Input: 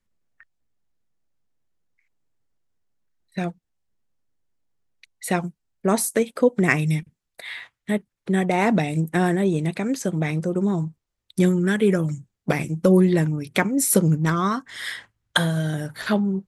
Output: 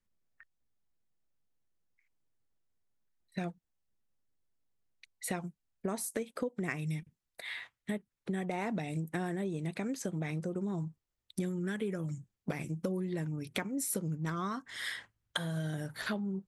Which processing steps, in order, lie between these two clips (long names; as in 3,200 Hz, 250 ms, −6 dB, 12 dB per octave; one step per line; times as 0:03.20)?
downward compressor, threshold −26 dBFS, peak gain reduction 14 dB
level −6.5 dB